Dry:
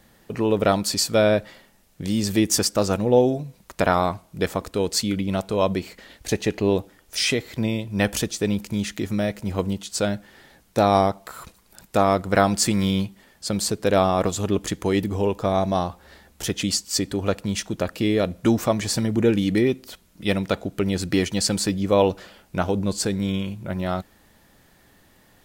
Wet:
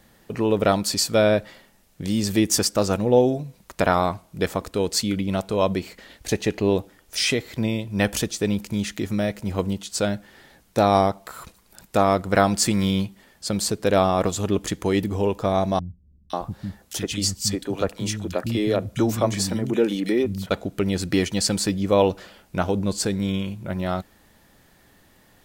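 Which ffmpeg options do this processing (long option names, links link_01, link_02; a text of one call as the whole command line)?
ffmpeg -i in.wav -filter_complex "[0:a]asettb=1/sr,asplit=3[link_01][link_02][link_03];[link_01]atrim=end=15.794[link_04];[link_02]atrim=start=15.79:end=20.51,asetpts=PTS-STARTPTS,afade=type=in:duration=0.004:curve=qsin,afade=type=out:start_time=4.716:duration=0.004:curve=qsin,acrossover=split=200|2200[link_05][link_06][link_07];[link_07]adelay=510[link_08];[link_06]adelay=540[link_09];[link_05][link_09][link_08]amix=inputs=3:normalize=0,atrim=end_sample=208152[link_10];[link_03]atrim=start=20.506[link_11];[link_04][link_10]acrossfade=duration=0.004:curve1=hsin:curve2=qsin[link_12];[link_12][link_11]acrossfade=duration=0.004:curve1=qsin:curve2=hsin" out.wav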